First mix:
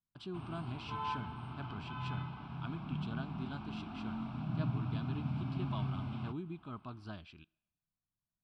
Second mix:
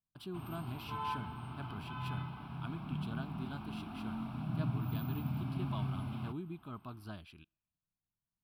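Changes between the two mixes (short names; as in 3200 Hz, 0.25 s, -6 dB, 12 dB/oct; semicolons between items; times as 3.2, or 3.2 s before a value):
speech: send -8.5 dB; master: remove inverse Chebyshev low-pass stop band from 12000 Hz, stop band 40 dB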